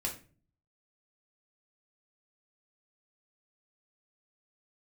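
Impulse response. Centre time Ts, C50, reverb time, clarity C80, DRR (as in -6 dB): 19 ms, 9.5 dB, 0.40 s, 15.5 dB, -1.0 dB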